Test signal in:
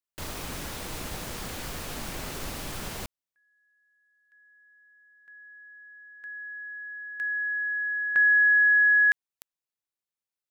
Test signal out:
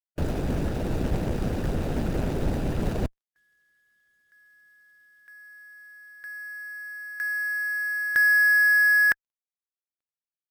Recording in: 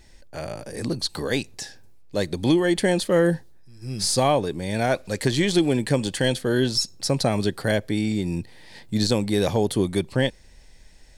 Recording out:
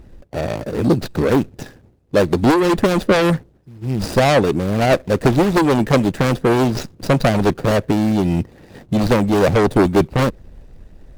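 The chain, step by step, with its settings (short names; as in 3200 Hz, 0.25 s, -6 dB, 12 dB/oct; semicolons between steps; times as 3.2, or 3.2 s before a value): median filter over 41 samples; added harmonics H 5 -7 dB, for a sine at -10.5 dBFS; harmonic-percussive split percussive +6 dB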